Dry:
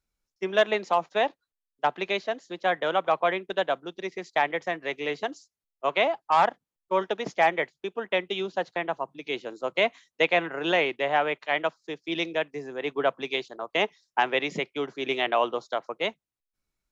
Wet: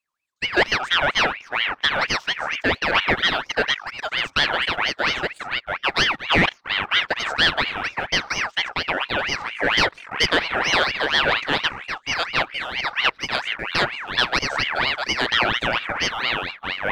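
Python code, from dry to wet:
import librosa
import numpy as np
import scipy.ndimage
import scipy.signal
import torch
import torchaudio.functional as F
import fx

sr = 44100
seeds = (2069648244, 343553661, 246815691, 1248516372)

y = fx.echo_pitch(x, sr, ms=161, semitones=-7, count=3, db_per_echo=-6.0)
y = fx.leveller(y, sr, passes=1)
y = fx.ring_lfo(y, sr, carrier_hz=1800.0, swing_pct=45, hz=4.3)
y = y * librosa.db_to_amplitude(3.5)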